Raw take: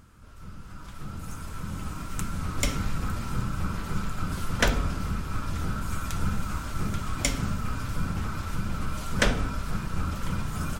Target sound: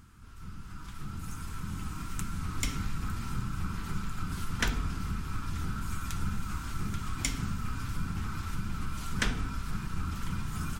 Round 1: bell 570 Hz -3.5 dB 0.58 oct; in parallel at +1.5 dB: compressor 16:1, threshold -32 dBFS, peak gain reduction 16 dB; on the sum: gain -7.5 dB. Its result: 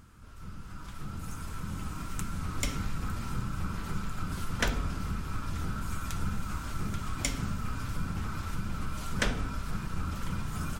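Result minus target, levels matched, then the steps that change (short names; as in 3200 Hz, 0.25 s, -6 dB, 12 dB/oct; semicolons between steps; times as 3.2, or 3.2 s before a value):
500 Hz band +5.5 dB
change: bell 570 Hz -15.5 dB 0.58 oct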